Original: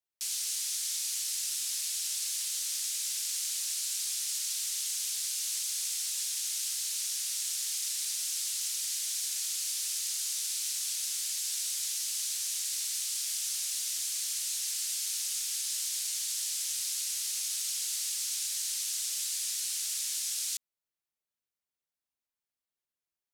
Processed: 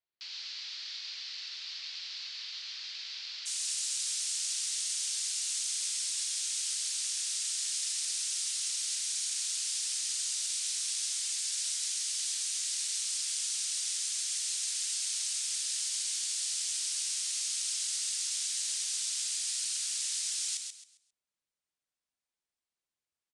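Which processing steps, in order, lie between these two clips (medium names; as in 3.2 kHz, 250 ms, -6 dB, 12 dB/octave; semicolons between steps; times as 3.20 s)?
elliptic low-pass 4.6 kHz, stop band 70 dB, from 3.45 s 9.4 kHz; feedback delay 134 ms, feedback 27%, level -5.5 dB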